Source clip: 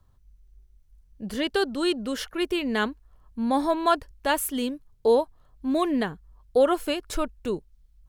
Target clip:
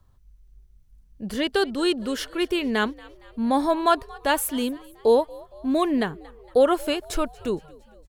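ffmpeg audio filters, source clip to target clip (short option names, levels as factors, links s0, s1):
-filter_complex "[0:a]asplit=5[s0][s1][s2][s3][s4];[s1]adelay=231,afreqshift=68,volume=0.0708[s5];[s2]adelay=462,afreqshift=136,volume=0.038[s6];[s3]adelay=693,afreqshift=204,volume=0.0207[s7];[s4]adelay=924,afreqshift=272,volume=0.0111[s8];[s0][s5][s6][s7][s8]amix=inputs=5:normalize=0,volume=1.26"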